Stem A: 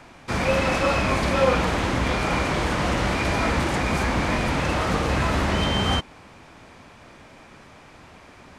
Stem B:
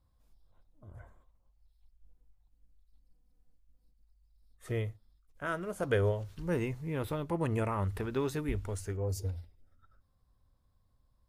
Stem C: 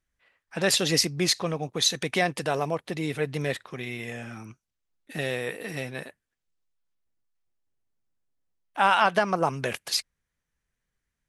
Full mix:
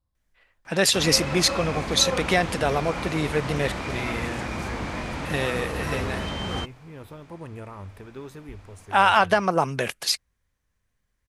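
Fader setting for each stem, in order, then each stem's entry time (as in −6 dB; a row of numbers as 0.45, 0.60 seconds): −8.0, −7.0, +3.0 decibels; 0.65, 0.00, 0.15 seconds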